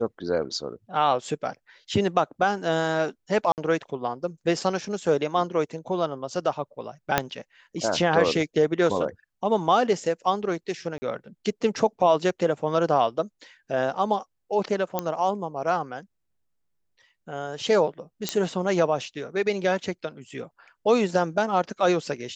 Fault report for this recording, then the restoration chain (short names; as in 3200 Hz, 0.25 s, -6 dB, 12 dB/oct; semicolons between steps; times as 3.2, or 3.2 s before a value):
3.52–3.58 gap 58 ms
7.18 pop -4 dBFS
10.98–11.02 gap 40 ms
14.99 pop -10 dBFS
18.29 pop -9 dBFS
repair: de-click; interpolate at 3.52, 58 ms; interpolate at 10.98, 40 ms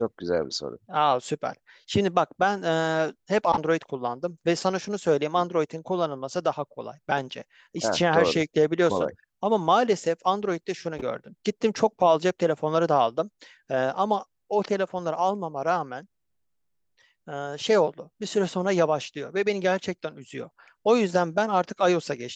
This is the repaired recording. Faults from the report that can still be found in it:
7.18 pop